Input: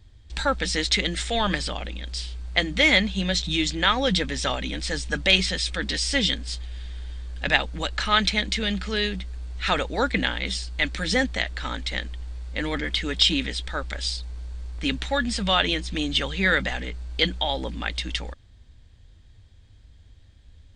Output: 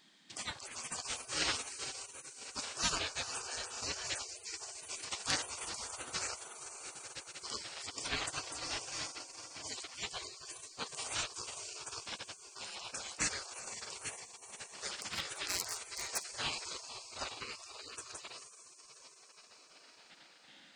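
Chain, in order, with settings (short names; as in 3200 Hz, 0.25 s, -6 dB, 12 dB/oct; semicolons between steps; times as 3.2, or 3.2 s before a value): diffused feedback echo 0.465 s, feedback 53%, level -9 dB; 14.95–16.4 hard clip -15 dBFS, distortion -27 dB; bell 460 Hz -12 dB 1.1 oct; notches 60/120/180/240 Hz; 1.08–1.93 comb 5.6 ms, depth 71%; on a send at -23 dB: reverb RT60 0.55 s, pre-delay 6 ms; on the sum: spectral gate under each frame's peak -25 dB weak; gain +3.5 dB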